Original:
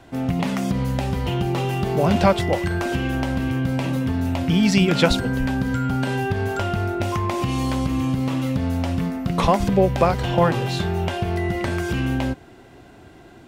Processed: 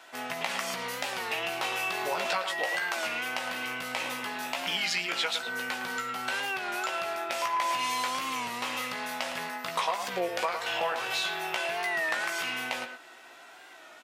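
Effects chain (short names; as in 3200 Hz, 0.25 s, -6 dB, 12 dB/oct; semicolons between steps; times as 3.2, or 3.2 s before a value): HPF 1100 Hz 12 dB/oct; compressor 6:1, threshold -31 dBFS, peak gain reduction 13 dB; doubler 16 ms -6.5 dB; speed mistake 25 fps video run at 24 fps; speakerphone echo 0.11 s, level -7 dB; record warp 33 1/3 rpm, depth 100 cents; gain +3 dB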